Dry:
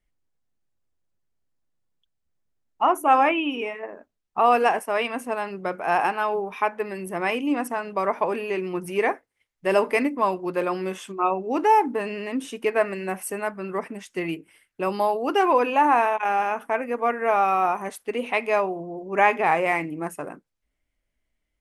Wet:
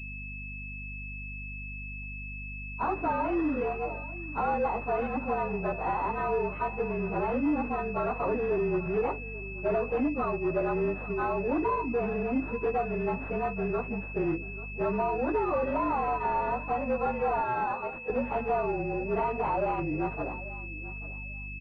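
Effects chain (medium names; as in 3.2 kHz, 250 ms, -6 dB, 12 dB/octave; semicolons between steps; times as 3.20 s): frequency axis rescaled in octaves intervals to 111%; compression, threshold -25 dBFS, peak gain reduction 10.5 dB; hum 50 Hz, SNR 14 dB; saturation -25 dBFS, distortion -15 dB; 17.40–18.10 s: high-pass 480 Hz 12 dB/octave; feedback delay 838 ms, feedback 16%, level -17 dB; class-D stage that switches slowly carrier 2.6 kHz; trim +4 dB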